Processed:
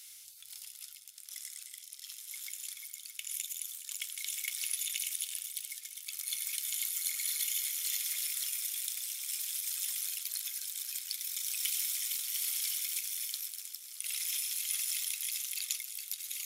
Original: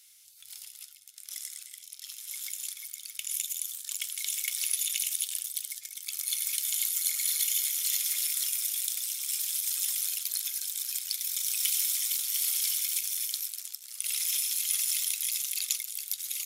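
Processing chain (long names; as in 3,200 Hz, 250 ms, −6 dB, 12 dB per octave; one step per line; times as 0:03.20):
dynamic equaliser 2,000 Hz, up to +4 dB, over −49 dBFS, Q 1.1
reversed playback
upward compression, threshold −33 dBFS
reversed playback
echo machine with several playback heads 209 ms, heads second and third, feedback 43%, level −17 dB
level −6 dB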